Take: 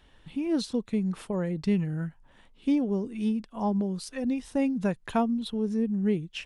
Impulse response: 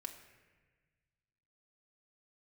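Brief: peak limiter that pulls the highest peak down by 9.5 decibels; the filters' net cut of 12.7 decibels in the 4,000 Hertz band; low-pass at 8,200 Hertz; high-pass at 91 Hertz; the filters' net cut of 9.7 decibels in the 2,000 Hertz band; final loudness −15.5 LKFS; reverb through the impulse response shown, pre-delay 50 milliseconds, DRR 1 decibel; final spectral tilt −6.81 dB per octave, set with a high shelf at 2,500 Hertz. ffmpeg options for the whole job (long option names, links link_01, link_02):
-filter_complex "[0:a]highpass=91,lowpass=8200,equalizer=frequency=2000:width_type=o:gain=-7,highshelf=frequency=2500:gain=-8,equalizer=frequency=4000:width_type=o:gain=-6.5,alimiter=level_in=2dB:limit=-24dB:level=0:latency=1,volume=-2dB,asplit=2[link_01][link_02];[1:a]atrim=start_sample=2205,adelay=50[link_03];[link_02][link_03]afir=irnorm=-1:irlink=0,volume=2.5dB[link_04];[link_01][link_04]amix=inputs=2:normalize=0,volume=15dB"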